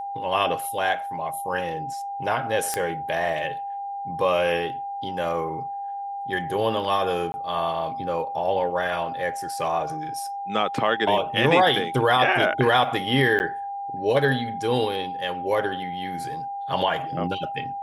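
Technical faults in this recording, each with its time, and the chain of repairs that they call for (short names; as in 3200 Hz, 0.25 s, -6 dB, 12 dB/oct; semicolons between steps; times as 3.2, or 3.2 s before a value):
tone 800 Hz -29 dBFS
2.74 pop -10 dBFS
7.32–7.34 gap 20 ms
13.39–13.4 gap 9.8 ms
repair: de-click; notch 800 Hz, Q 30; interpolate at 7.32, 20 ms; interpolate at 13.39, 9.8 ms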